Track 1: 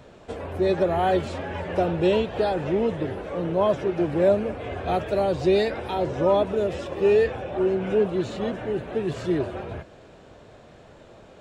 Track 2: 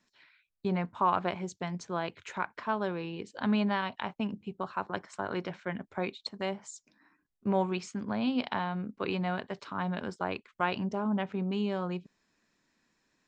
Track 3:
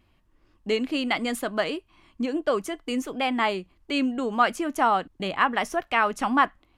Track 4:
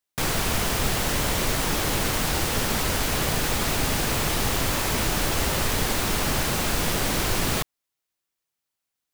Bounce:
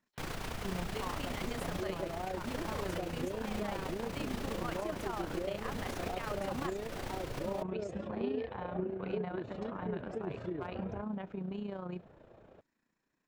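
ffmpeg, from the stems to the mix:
ffmpeg -i stem1.wav -i stem2.wav -i stem3.wav -i stem4.wav -filter_complex "[0:a]highshelf=frequency=3200:gain=-11,adelay=1200,volume=-6.5dB[link_01];[1:a]equalizer=frequency=4900:width=0.58:gain=-8,volume=-3.5dB[link_02];[2:a]adelay=250,volume=-11.5dB[link_03];[3:a]alimiter=limit=-20.5dB:level=0:latency=1:release=68,volume=-3.5dB[link_04];[link_02][link_03]amix=inputs=2:normalize=0,asoftclip=type=hard:threshold=-22dB,alimiter=level_in=6.5dB:limit=-24dB:level=0:latency=1:release=31,volume=-6.5dB,volume=0dB[link_05];[link_01][link_04]amix=inputs=2:normalize=0,highshelf=frequency=4900:gain=-11.5,acompressor=threshold=-33dB:ratio=6,volume=0dB[link_06];[link_05][link_06]amix=inputs=2:normalize=0,tremolo=f=29:d=0.571" out.wav

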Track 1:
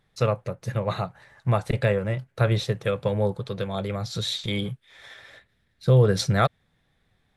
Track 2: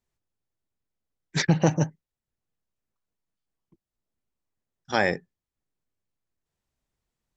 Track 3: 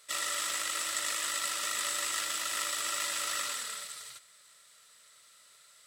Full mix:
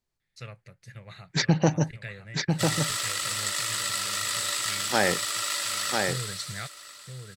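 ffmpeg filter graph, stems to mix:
ffmpeg -i stem1.wav -i stem2.wav -i stem3.wav -filter_complex "[0:a]equalizer=frequency=250:width_type=o:width=1:gain=-4,equalizer=frequency=500:width_type=o:width=1:gain=-7,equalizer=frequency=1000:width_type=o:width=1:gain=-9,equalizer=frequency=2000:width_type=o:width=1:gain=11,equalizer=frequency=8000:width_type=o:width=1:gain=7,adelay=200,volume=-16dB,asplit=2[link_01][link_02];[link_02]volume=-7dB[link_03];[1:a]volume=-1dB,asplit=3[link_04][link_05][link_06];[link_05]volume=-4dB[link_07];[2:a]adelay=2500,volume=3dB,asplit=2[link_08][link_09];[link_09]volume=-16.5dB[link_10];[link_06]apad=whole_len=333415[link_11];[link_01][link_11]sidechaincompress=threshold=-38dB:ratio=8:attack=49:release=105[link_12];[link_03][link_07][link_10]amix=inputs=3:normalize=0,aecho=0:1:997:1[link_13];[link_12][link_04][link_08][link_13]amix=inputs=4:normalize=0,equalizer=frequency=4500:width=4.2:gain=5.5" out.wav

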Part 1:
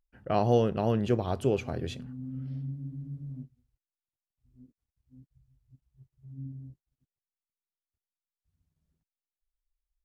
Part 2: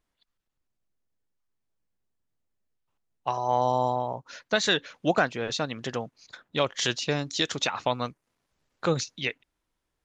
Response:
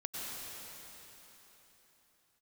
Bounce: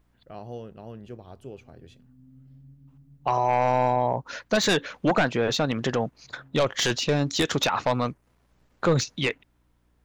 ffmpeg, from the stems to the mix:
-filter_complex "[0:a]aeval=exprs='val(0)+0.00251*(sin(2*PI*60*n/s)+sin(2*PI*2*60*n/s)/2+sin(2*PI*3*60*n/s)/3+sin(2*PI*4*60*n/s)/4+sin(2*PI*5*60*n/s)/5)':channel_layout=same,volume=-14.5dB[link_01];[1:a]aeval=exprs='0.355*sin(PI/2*2.51*val(0)/0.355)':channel_layout=same,equalizer=frequency=6500:width=0.34:gain=-7.5,volume=-1dB[link_02];[link_01][link_02]amix=inputs=2:normalize=0,alimiter=limit=-14.5dB:level=0:latency=1:release=40"

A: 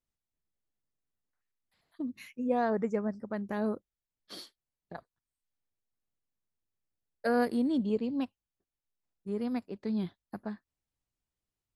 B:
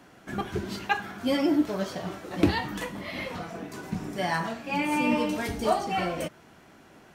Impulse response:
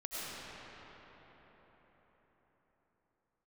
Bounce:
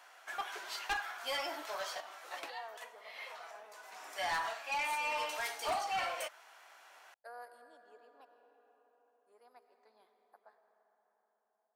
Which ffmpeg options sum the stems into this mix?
-filter_complex "[0:a]equalizer=frequency=3100:width=0.76:gain=-13.5,volume=-13.5dB,asplit=3[link_01][link_02][link_03];[link_02]volume=-8dB[link_04];[1:a]volume=-1dB[link_05];[link_03]apad=whole_len=314880[link_06];[link_05][link_06]sidechaincompress=threshold=-52dB:ratio=12:attack=5.5:release=518[link_07];[2:a]atrim=start_sample=2205[link_08];[link_04][link_08]afir=irnorm=-1:irlink=0[link_09];[link_01][link_07][link_09]amix=inputs=3:normalize=0,highpass=frequency=710:width=0.5412,highpass=frequency=710:width=1.3066,asoftclip=type=tanh:threshold=-30dB"

